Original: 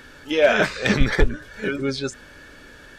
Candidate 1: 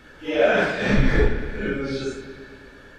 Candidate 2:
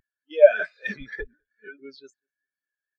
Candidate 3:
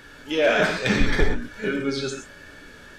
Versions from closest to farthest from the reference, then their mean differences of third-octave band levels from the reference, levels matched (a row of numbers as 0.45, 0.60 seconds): 3, 1, 2; 3.0, 5.0, 18.5 decibels